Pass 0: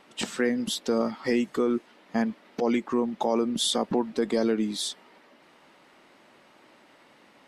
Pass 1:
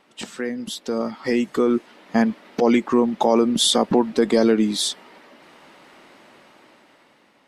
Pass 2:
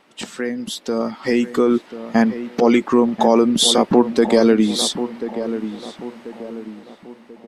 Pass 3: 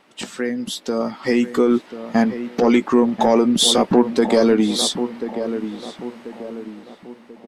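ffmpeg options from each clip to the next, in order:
-af "dynaudnorm=f=400:g=7:m=3.98,volume=0.75"
-filter_complex "[0:a]asplit=2[s0][s1];[s1]adelay=1038,lowpass=f=1400:p=1,volume=0.299,asplit=2[s2][s3];[s3]adelay=1038,lowpass=f=1400:p=1,volume=0.43,asplit=2[s4][s5];[s5]adelay=1038,lowpass=f=1400:p=1,volume=0.43,asplit=2[s6][s7];[s7]adelay=1038,lowpass=f=1400:p=1,volume=0.43,asplit=2[s8][s9];[s9]adelay=1038,lowpass=f=1400:p=1,volume=0.43[s10];[s0][s2][s4][s6][s8][s10]amix=inputs=6:normalize=0,volume=1.41"
-filter_complex "[0:a]asoftclip=type=tanh:threshold=0.631,asplit=2[s0][s1];[s1]adelay=16,volume=0.211[s2];[s0][s2]amix=inputs=2:normalize=0"

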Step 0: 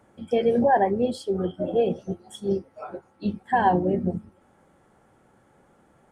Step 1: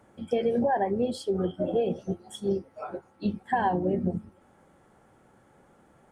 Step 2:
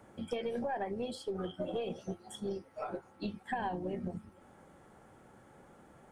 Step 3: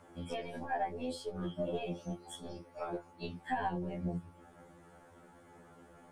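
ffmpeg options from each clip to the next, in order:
-af "acompressor=threshold=0.0794:ratio=6"
-filter_complex "[0:a]acrossover=split=880|2000[s0][s1][s2];[s0]acompressor=threshold=0.0112:ratio=4[s3];[s1]acompressor=threshold=0.00447:ratio=4[s4];[s2]acompressor=threshold=0.00316:ratio=4[s5];[s3][s4][s5]amix=inputs=3:normalize=0,aeval=exprs='0.0708*(cos(1*acos(clip(val(0)/0.0708,-1,1)))-cos(1*PI/2))+0.0112*(cos(2*acos(clip(val(0)/0.0708,-1,1)))-cos(2*PI/2))':c=same,volume=1.12"
-af "afftfilt=real='re*2*eq(mod(b,4),0)':imag='im*2*eq(mod(b,4),0)':win_size=2048:overlap=0.75,volume=1.41"

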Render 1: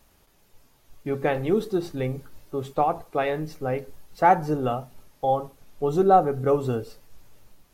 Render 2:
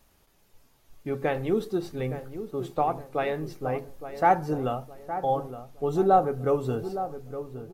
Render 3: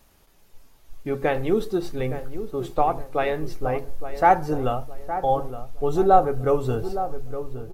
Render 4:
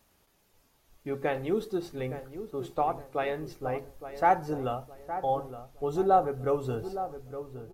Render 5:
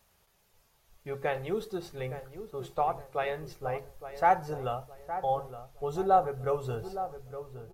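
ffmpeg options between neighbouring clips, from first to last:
-filter_complex "[0:a]asplit=2[s0][s1];[s1]adelay=865,lowpass=f=1300:p=1,volume=0.299,asplit=2[s2][s3];[s3]adelay=865,lowpass=f=1300:p=1,volume=0.4,asplit=2[s4][s5];[s5]adelay=865,lowpass=f=1300:p=1,volume=0.4,asplit=2[s6][s7];[s7]adelay=865,lowpass=f=1300:p=1,volume=0.4[s8];[s0][s2][s4][s6][s8]amix=inputs=5:normalize=0,volume=0.708"
-af "asubboost=boost=7.5:cutoff=61,volume=1.68"
-af "highpass=f=75:p=1,volume=0.473"
-af "equalizer=f=280:t=o:w=0.49:g=-15"

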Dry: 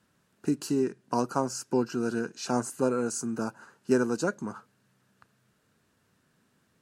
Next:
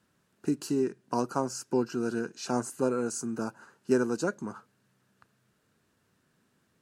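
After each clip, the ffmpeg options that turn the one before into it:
-af "equalizer=f=360:t=o:w=0.45:g=2,volume=0.794"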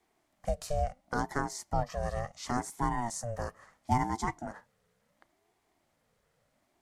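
-af "aeval=exprs='val(0)*sin(2*PI*430*n/s+430*0.3/0.72*sin(2*PI*0.72*n/s))':c=same"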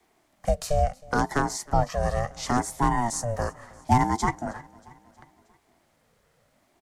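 -filter_complex "[0:a]acrossover=split=370|640|5100[s0][s1][s2][s3];[s2]aeval=exprs='clip(val(0),-1,0.0447)':c=same[s4];[s0][s1][s4][s3]amix=inputs=4:normalize=0,aecho=1:1:316|632|948|1264:0.0708|0.0404|0.023|0.0131,volume=2.51"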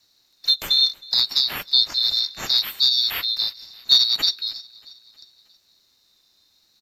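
-filter_complex "[0:a]afftfilt=real='real(if(lt(b,736),b+184*(1-2*mod(floor(b/184),2)),b),0)':imag='imag(if(lt(b,736),b+184*(1-2*mod(floor(b/184),2)),b),0)':win_size=2048:overlap=0.75,acrossover=split=170|6200[s0][s1][s2];[s0]acrusher=samples=14:mix=1:aa=0.000001[s3];[s3][s1][s2]amix=inputs=3:normalize=0,afreqshift=-410,volume=1.58"

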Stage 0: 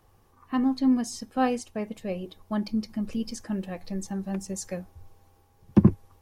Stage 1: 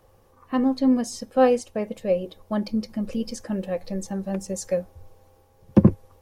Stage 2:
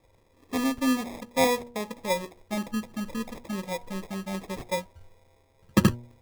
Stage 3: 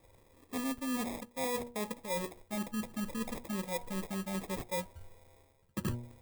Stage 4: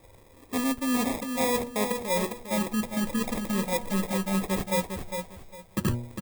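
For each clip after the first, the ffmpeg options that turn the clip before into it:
-af "equalizer=f=530:t=o:w=0.37:g=12,volume=1.26"
-af "acrusher=samples=30:mix=1:aa=0.000001,bandreject=f=120.1:t=h:w=4,bandreject=f=240.2:t=h:w=4,bandreject=f=360.3:t=h:w=4,bandreject=f=480.4:t=h:w=4,bandreject=f=600.5:t=h:w=4,bandreject=f=720.6:t=h:w=4,bandreject=f=840.7:t=h:w=4,bandreject=f=960.8:t=h:w=4,volume=0.562"
-af "areverse,acompressor=threshold=0.0224:ratio=10,areverse,aexciter=amount=1.3:drive=8.2:freq=7800"
-af "aecho=1:1:404|808|1212:0.473|0.114|0.0273,volume=2.66"

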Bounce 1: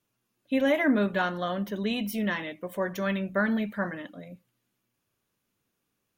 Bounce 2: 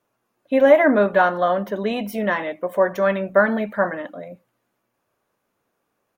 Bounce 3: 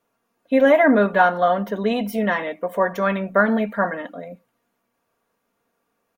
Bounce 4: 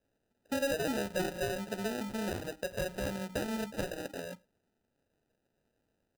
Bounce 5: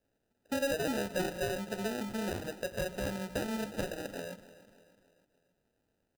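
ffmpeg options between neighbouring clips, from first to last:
-af "firequalizer=gain_entry='entry(120,0);entry(590,14);entry(3000,0)':delay=0.05:min_phase=1"
-af "aecho=1:1:4.3:0.42"
-af "acompressor=threshold=0.0398:ratio=3,acrusher=samples=40:mix=1:aa=0.000001,volume=0.473"
-af "aecho=1:1:296|592|888|1184:0.141|0.0692|0.0339|0.0166"

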